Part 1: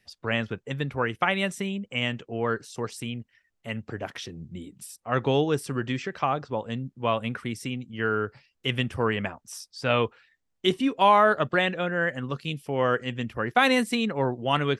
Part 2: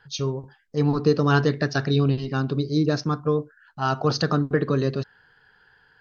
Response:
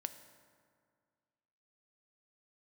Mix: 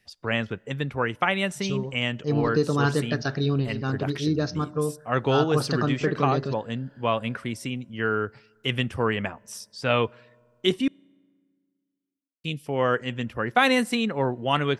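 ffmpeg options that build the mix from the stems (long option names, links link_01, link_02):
-filter_complex "[0:a]volume=0dB,asplit=3[link_01][link_02][link_03];[link_01]atrim=end=10.88,asetpts=PTS-STARTPTS,afade=type=out:start_time=10.876:duration=0.004:curve=hsin[link_04];[link_02]atrim=start=10.88:end=12.44,asetpts=PTS-STARTPTS,volume=0[link_05];[link_03]atrim=start=12.44,asetpts=PTS-STARTPTS,afade=type=in:duration=0.004:curve=hsin[link_06];[link_04][link_05][link_06]concat=n=3:v=0:a=1,asplit=2[link_07][link_08];[link_08]volume=-17dB[link_09];[1:a]deesser=0.5,adelay=1500,volume=-5.5dB,asplit=2[link_10][link_11];[link_11]volume=-9dB[link_12];[2:a]atrim=start_sample=2205[link_13];[link_09][link_12]amix=inputs=2:normalize=0[link_14];[link_14][link_13]afir=irnorm=-1:irlink=0[link_15];[link_07][link_10][link_15]amix=inputs=3:normalize=0"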